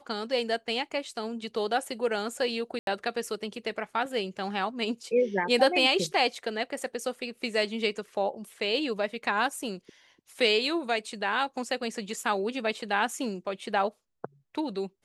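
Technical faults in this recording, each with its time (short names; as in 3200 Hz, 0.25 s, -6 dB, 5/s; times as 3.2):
2.79–2.87 gap 82 ms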